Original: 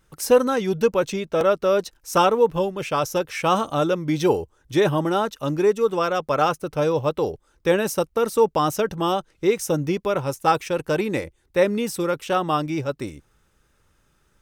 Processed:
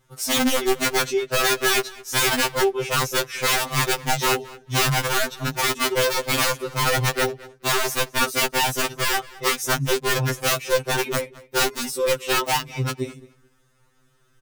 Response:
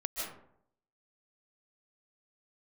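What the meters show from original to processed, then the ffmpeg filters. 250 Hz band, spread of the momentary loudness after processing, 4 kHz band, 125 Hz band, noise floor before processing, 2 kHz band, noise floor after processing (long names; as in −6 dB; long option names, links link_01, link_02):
−5.0 dB, 5 LU, +10.0 dB, +1.0 dB, −65 dBFS, +8.0 dB, −61 dBFS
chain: -filter_complex "[0:a]aeval=exprs='(mod(5.96*val(0)+1,2)-1)/5.96':channel_layout=same,asplit=2[link_01][link_02];[link_02]adelay=216,lowpass=frequency=4500:poles=1,volume=-20dB,asplit=2[link_03][link_04];[link_04]adelay=216,lowpass=frequency=4500:poles=1,volume=0.17[link_05];[link_01][link_03][link_05]amix=inputs=3:normalize=0,afftfilt=real='re*2.45*eq(mod(b,6),0)':imag='im*2.45*eq(mod(b,6),0)':win_size=2048:overlap=0.75,volume=3.5dB"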